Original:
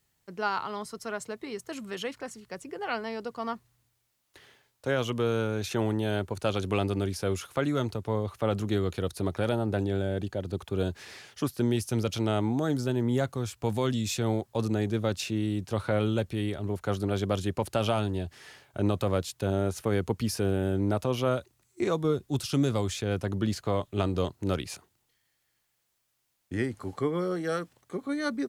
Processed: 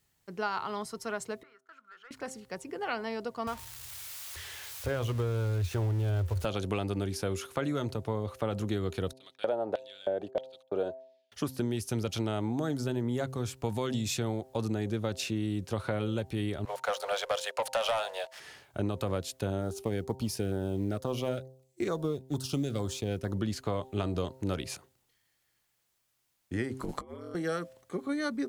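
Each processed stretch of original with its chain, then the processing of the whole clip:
1.43–2.11 band-pass 1400 Hz, Q 12 + sample leveller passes 1
3.47–6.45 switching spikes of -23 dBFS + LPF 1600 Hz 6 dB/oct + resonant low shelf 120 Hz +13.5 dB, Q 3
9.13–11.32 gate -40 dBFS, range -31 dB + tilt -4 dB/oct + LFO high-pass square 1.6 Hz 610–3400 Hz
16.65–18.4 steep high-pass 500 Hz 72 dB/oct + high shelf 11000 Hz -7 dB + sample leveller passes 2
19.61–23.33 G.711 law mismatch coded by A + LFO notch saw down 2.2 Hz 850–2900 Hz
26.79–27.35 high shelf 11000 Hz +4 dB + negative-ratio compressor -35 dBFS, ratio -0.5 + ring modulator 71 Hz
whole clip: de-hum 130.9 Hz, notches 7; compressor, threshold -27 dBFS

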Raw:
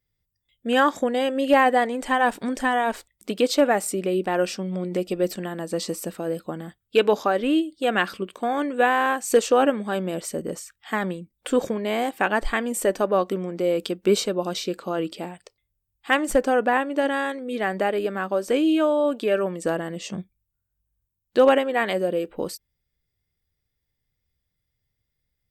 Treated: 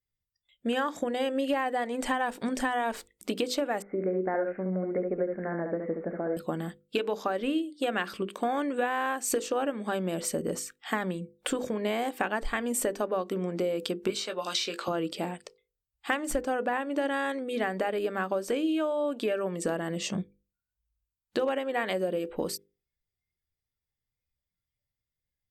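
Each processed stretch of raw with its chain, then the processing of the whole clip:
3.82–6.37 rippled Chebyshev low-pass 2200 Hz, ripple 6 dB + echo 70 ms -5.5 dB
14.1–14.88 band-pass 3200 Hz, Q 0.51 + doubler 18 ms -7 dB + three-band squash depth 100%
whole clip: spectral noise reduction 13 dB; compressor 10:1, threshold -27 dBFS; notches 50/100/150/200/250/300/350/400/450/500 Hz; gain +2 dB

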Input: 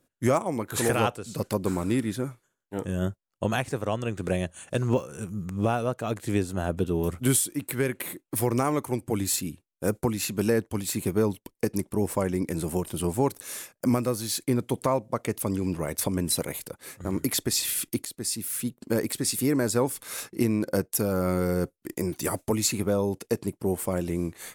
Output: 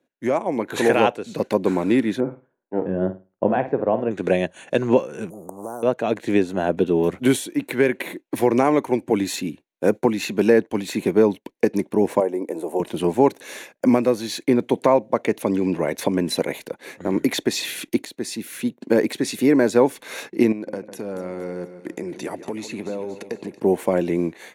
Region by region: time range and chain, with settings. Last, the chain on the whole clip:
2.2–4.11 LPF 1100 Hz + flutter echo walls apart 9 m, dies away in 0.28 s
5.3–5.83 elliptic band-stop 720–9100 Hz, stop band 70 dB + spectral compressor 4:1
12.2–12.8 Chebyshev high-pass 470 Hz + band shelf 2800 Hz -12.5 dB 2.5 oct
20.52–23.6 steep low-pass 12000 Hz 96 dB/oct + compressor 8:1, threshold -33 dBFS + split-band echo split 2100 Hz, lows 0.151 s, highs 0.234 s, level -12 dB
whole clip: thirty-one-band EQ 1250 Hz -10 dB, 3150 Hz -4 dB, 5000 Hz -11 dB, 8000 Hz -7 dB; AGC gain up to 9 dB; three-band isolator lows -23 dB, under 190 Hz, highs -19 dB, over 6000 Hz; gain +1.5 dB

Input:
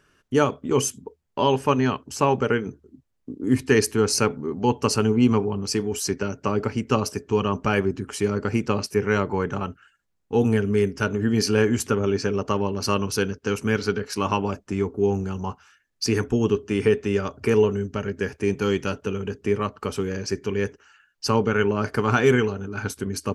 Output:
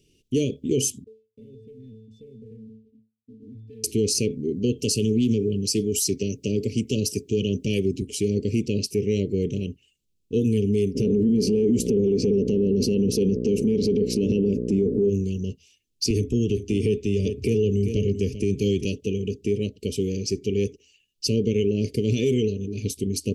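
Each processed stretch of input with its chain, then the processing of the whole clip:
1.04–3.84 octave resonator A, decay 0.39 s + compressor 4:1, threshold -46 dBFS + sample leveller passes 1
4.79–8.02 HPF 71 Hz 24 dB/oct + high shelf 6100 Hz +8.5 dB + Doppler distortion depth 0.13 ms
10.94–15.08 compressor 2.5:1, threshold -28 dBFS + buzz 60 Hz, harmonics 10, -42 dBFS -2 dB/oct + small resonant body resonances 220/420/1500 Hz, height 16 dB, ringing for 20 ms
16.1–18.85 low shelf 81 Hz +11.5 dB + echo 0.391 s -14 dB + three-band squash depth 40%
whole clip: inverse Chebyshev band-stop 760–1600 Hz, stop band 50 dB; limiter -16 dBFS; gain +2.5 dB

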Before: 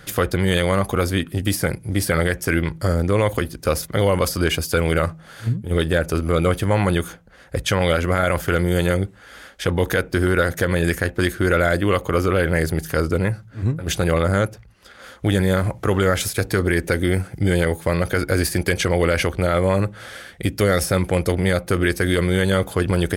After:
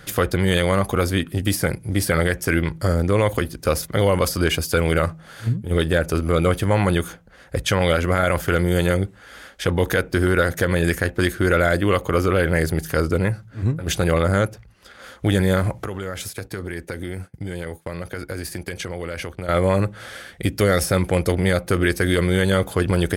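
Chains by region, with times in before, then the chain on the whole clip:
15.85–19.49 expander -25 dBFS + HPF 49 Hz + compressor 2.5:1, threshold -30 dBFS
whole clip: dry

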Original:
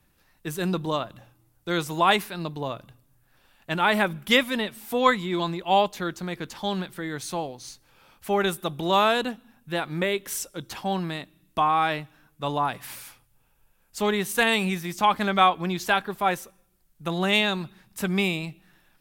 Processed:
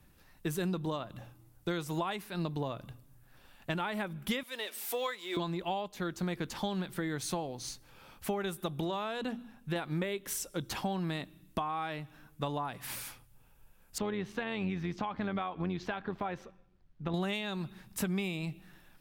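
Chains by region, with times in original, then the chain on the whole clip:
4.43–5.37 G.711 law mismatch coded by mu + HPF 430 Hz 24 dB/oct + bell 840 Hz -7 dB 2.1 oct
8.84–9.76 high shelf 11000 Hz -8.5 dB + notches 60/120/180/240/300 Hz + compressor 2:1, threshold -27 dBFS
13.98–17.14 compressor 2:1, threshold -31 dBFS + AM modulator 92 Hz, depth 25% + air absorption 230 m
whole clip: compressor 12:1, threshold -33 dBFS; low shelf 400 Hz +4.5 dB

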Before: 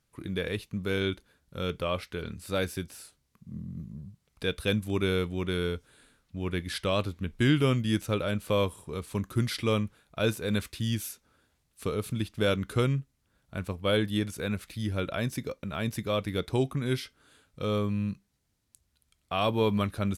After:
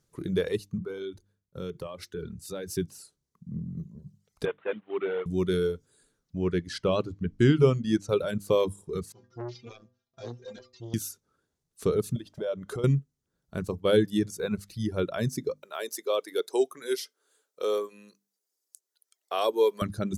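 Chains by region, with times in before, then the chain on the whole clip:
0.78–2.77 notches 50/100/150/200/250/300/350 Hz + compressor 16:1, threshold -34 dBFS + three-band expander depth 70%
4.45–5.26 CVSD 16 kbps + HPF 540 Hz
6.38–8.09 LPF 6200 Hz + notch 3600 Hz, Q 10
9.12–10.94 CVSD 32 kbps + metallic resonator 120 Hz, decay 0.41 s, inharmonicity 0.008 + core saturation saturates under 840 Hz
12.16–12.84 bell 870 Hz +6.5 dB 2.1 oct + compressor 10:1, threshold -35 dBFS + small resonant body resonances 590/3200 Hz, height 11 dB, ringing for 35 ms
15.56–19.82 HPF 400 Hz 24 dB/oct + high shelf 8900 Hz +9.5 dB
whole clip: notches 50/100/150/200/250/300 Hz; reverb removal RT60 1.7 s; fifteen-band EQ 160 Hz +8 dB, 400 Hz +9 dB, 2500 Hz -6 dB, 6300 Hz +6 dB

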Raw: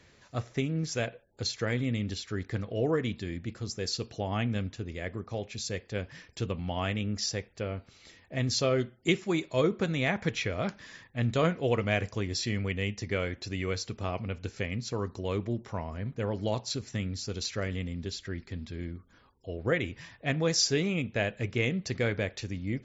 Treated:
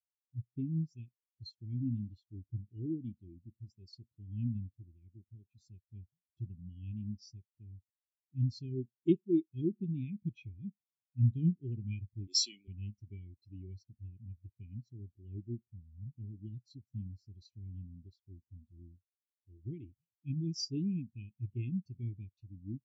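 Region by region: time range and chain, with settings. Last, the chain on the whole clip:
12.27–12.68 HPF 480 Hz + high shelf 3100 Hz +11 dB + sample leveller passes 2
whole clip: elliptic band-stop 350–2600 Hz, stop band 40 dB; spectral expander 2.5:1; gain -4 dB

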